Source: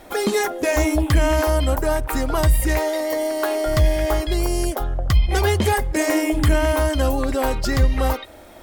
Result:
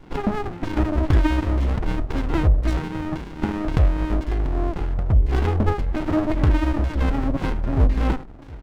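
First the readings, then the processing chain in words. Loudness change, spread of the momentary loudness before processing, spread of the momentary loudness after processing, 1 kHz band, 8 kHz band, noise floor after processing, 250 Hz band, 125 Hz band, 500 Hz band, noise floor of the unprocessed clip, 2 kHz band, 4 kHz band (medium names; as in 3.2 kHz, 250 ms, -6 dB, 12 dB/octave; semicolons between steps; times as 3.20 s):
-2.5 dB, 4 LU, 7 LU, -5.0 dB, under -20 dB, -37 dBFS, -0.5 dB, +0.5 dB, -8.5 dB, -42 dBFS, -8.0 dB, -10.5 dB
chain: delay 716 ms -21.5 dB; LFO low-pass saw down 1.9 Hz 400–2400 Hz; sliding maximum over 65 samples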